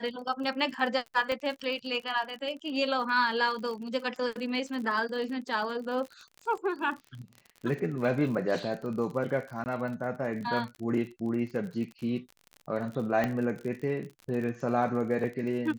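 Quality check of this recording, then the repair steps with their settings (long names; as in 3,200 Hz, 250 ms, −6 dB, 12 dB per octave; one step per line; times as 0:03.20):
surface crackle 46 per second −37 dBFS
0:01.32: click −19 dBFS
0:09.64–0:09.66: drop-out 19 ms
0:13.24: click −16 dBFS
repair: click removal
repair the gap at 0:09.64, 19 ms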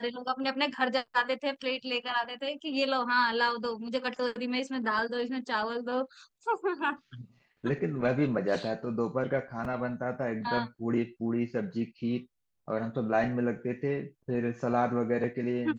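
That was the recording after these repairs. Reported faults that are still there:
0:01.32: click
0:13.24: click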